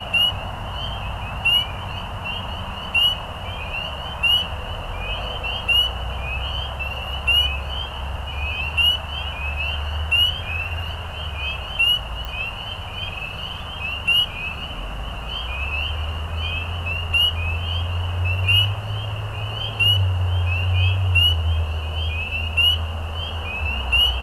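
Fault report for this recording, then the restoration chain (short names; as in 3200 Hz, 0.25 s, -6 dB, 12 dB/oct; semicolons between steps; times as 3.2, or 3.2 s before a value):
12.25 pop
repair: de-click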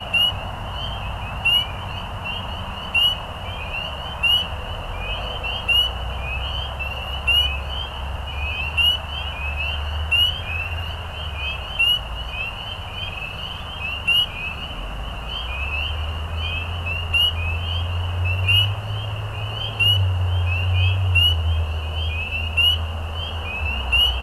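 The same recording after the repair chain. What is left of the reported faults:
12.25 pop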